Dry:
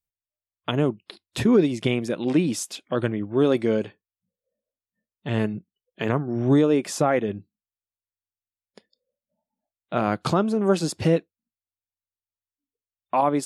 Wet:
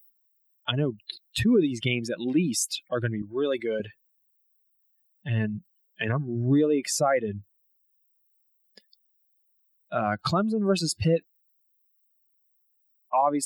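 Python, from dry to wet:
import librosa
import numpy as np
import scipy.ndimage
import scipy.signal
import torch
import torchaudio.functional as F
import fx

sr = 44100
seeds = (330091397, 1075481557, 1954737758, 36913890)

y = fx.bin_expand(x, sr, power=2.0)
y = fx.highpass(y, sr, hz=680.0, slope=6, at=(3.22, 3.8))
y = fx.env_flatten(y, sr, amount_pct=50)
y = y * 10.0 ** (-2.0 / 20.0)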